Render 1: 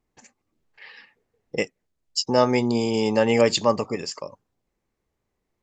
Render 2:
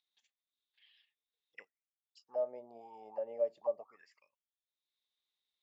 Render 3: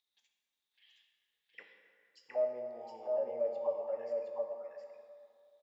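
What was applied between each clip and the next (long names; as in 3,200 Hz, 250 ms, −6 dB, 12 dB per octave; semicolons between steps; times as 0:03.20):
upward compression, threshold −37 dBFS; envelope filter 600–3,800 Hz, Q 13, down, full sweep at −17 dBFS; level −9 dB
on a send: single-tap delay 716 ms −3 dB; on the sum: dense smooth reverb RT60 2.4 s, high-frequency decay 0.6×, DRR 3.5 dB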